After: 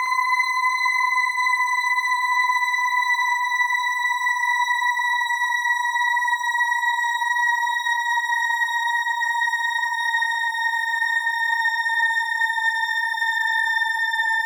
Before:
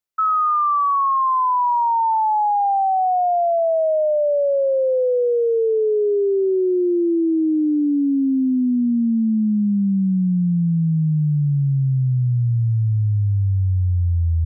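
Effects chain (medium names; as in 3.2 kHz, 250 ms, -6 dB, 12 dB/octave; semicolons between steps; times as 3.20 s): comb filter that takes the minimum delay 0.63 ms; high-pass 77 Hz; Paulstretch 23×, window 0.05 s, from 1.45 s; flutter echo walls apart 10.1 m, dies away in 0.47 s; spring tank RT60 2.6 s, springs 59 ms, chirp 70 ms, DRR 4 dB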